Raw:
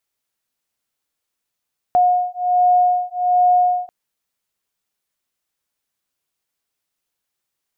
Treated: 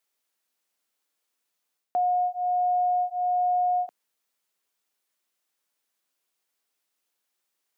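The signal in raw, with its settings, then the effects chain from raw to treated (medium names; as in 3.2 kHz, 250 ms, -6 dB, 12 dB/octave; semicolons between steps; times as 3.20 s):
beating tones 720 Hz, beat 1.3 Hz, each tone -16 dBFS 1.94 s
reverse; compression 6:1, threshold -23 dBFS; reverse; high-pass 240 Hz 12 dB/octave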